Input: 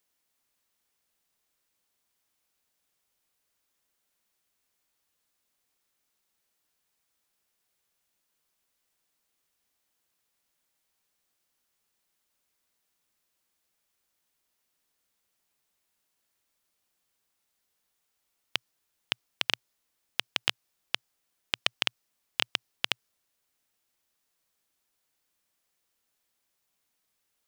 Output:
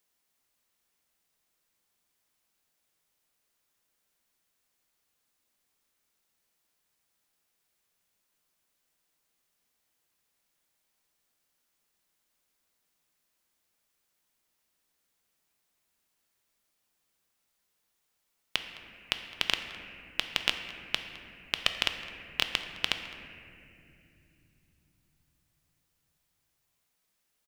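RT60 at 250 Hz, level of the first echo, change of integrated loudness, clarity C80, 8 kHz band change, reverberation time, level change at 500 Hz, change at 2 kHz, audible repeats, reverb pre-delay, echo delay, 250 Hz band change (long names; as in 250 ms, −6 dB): 5.3 s, −20.0 dB, 0.0 dB, 8.0 dB, +0.5 dB, 2.8 s, +1.0 dB, +1.0 dB, 1, 3 ms, 211 ms, +2.0 dB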